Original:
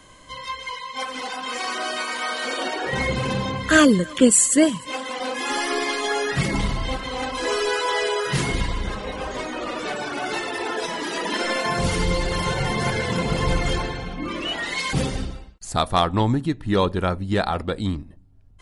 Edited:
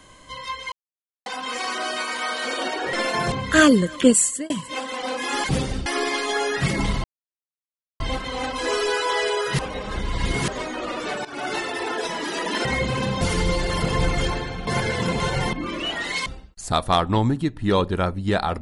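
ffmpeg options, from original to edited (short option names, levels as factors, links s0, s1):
-filter_complex "[0:a]asplit=19[s0][s1][s2][s3][s4][s5][s6][s7][s8][s9][s10][s11][s12][s13][s14][s15][s16][s17][s18];[s0]atrim=end=0.72,asetpts=PTS-STARTPTS,afade=t=out:st=0.716:d=0.004:c=hsin[s19];[s1]atrim=start=0.72:end=1.26,asetpts=PTS-STARTPTS,volume=0[s20];[s2]atrim=start=1.26:end=2.932,asetpts=PTS-STARTPTS,afade=t=in:d=0.004:c=hsin[s21];[s3]atrim=start=11.438:end=11.832[s22];[s4]atrim=start=3.488:end=4.67,asetpts=PTS-STARTPTS,afade=t=out:st=0.782:d=0.4[s23];[s5]atrim=start=4.67:end=5.612,asetpts=PTS-STARTPTS,afade=t=in:d=0.004:c=hsin[s24];[s6]atrim=start=14.878:end=15.302[s25];[s7]atrim=start=5.608:end=6.79,asetpts=PTS-STARTPTS,afade=t=out:st=1.178:d=0.004:c=hsin,apad=pad_dur=0.96[s26];[s8]atrim=start=6.79:end=8.382,asetpts=PTS-STARTPTS,afade=t=in:d=0.004:c=hsin[s27];[s9]atrim=start=8.378:end=9.272,asetpts=PTS-STARTPTS,areverse[s28];[s10]atrim=start=9.268:end=10.04,asetpts=PTS-STARTPTS,afade=t=out:st=0.768:d=0.004:c=hsin:silence=0.158489[s29];[s11]atrim=start=10.04:end=11.442,asetpts=PTS-STARTPTS,afade=t=in:d=0.27:c=qsin:silence=0.158489[s30];[s12]atrim=start=2.928:end=3.492[s31];[s13]atrim=start=11.828:end=12.442[s32];[s14]atrim=start=13.298:end=14.152[s33];[s15]atrim=start=12.768:end=13.302[s34];[s16]atrim=start=12.438:end=12.772[s35];[s17]atrim=start=14.148:end=14.882[s36];[s18]atrim=start=15.298[s37];[s19][s20][s21]concat=n=3:v=0:a=1[s38];[s38][s22]acrossfade=d=0.004:c1=hsin:c2=hsin[s39];[s23][s24]concat=n=2:v=0:a=1[s40];[s39][s40]acrossfade=d=0.004:c1=hsin:c2=hsin[s41];[s41][s25]acrossfade=d=0.004:c1=hsin:c2=hsin[s42];[s26][s27]concat=n=2:v=0:a=1[s43];[s42][s43]acrossfade=d=0.004:c1=hsin:c2=hsin[s44];[s44][s28]acrossfade=d=0.004:c1=hsin:c2=hsin[s45];[s29][s30]concat=n=2:v=0:a=1[s46];[s45][s46]acrossfade=d=0.004:c1=hsin:c2=hsin[s47];[s47][s31]acrossfade=d=0.004:c1=hsin:c2=hsin[s48];[s48][s32]acrossfade=d=0.004:c1=hsin:c2=hsin[s49];[s49][s33]acrossfade=d=0.004:c1=hsin:c2=hsin[s50];[s50][s34]acrossfade=d=0.004:c1=hsin:c2=hsin[s51];[s51][s35]acrossfade=d=0.004:c1=hsin:c2=hsin[s52];[s52][s36]acrossfade=d=0.004:c1=hsin:c2=hsin[s53];[s53][s37]acrossfade=d=0.004:c1=hsin:c2=hsin"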